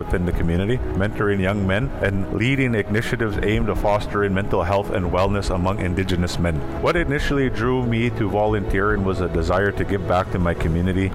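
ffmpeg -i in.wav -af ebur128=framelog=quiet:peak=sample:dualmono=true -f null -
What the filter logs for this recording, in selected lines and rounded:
Integrated loudness:
  I:         -18.2 LUFS
  Threshold: -28.2 LUFS
Loudness range:
  LRA:         0.7 LU
  Threshold: -38.1 LUFS
  LRA low:   -18.4 LUFS
  LRA high:  -17.8 LUFS
Sample peak:
  Peak:       -7.5 dBFS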